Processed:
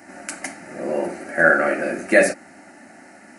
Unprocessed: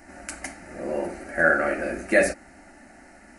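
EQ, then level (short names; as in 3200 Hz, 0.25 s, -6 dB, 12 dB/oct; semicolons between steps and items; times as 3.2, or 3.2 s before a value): HPF 120 Hz 24 dB/oct; +4.5 dB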